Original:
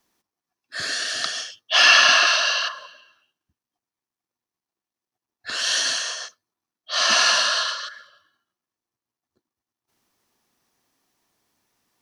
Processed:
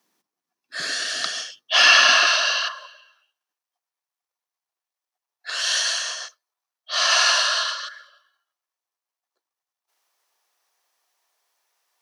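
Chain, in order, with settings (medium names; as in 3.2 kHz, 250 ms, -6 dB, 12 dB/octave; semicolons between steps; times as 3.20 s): high-pass 150 Hz 24 dB/octave, from 2.55 s 530 Hz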